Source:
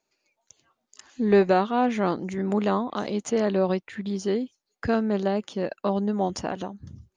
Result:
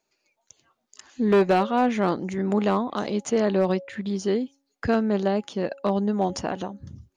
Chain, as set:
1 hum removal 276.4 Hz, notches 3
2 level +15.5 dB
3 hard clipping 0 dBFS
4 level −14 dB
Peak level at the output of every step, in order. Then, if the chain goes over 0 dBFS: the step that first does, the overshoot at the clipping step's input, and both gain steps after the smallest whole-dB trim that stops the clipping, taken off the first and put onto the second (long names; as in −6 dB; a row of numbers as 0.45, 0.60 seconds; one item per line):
−9.5, +6.0, 0.0, −14.0 dBFS
step 2, 6.0 dB
step 2 +9.5 dB, step 4 −8 dB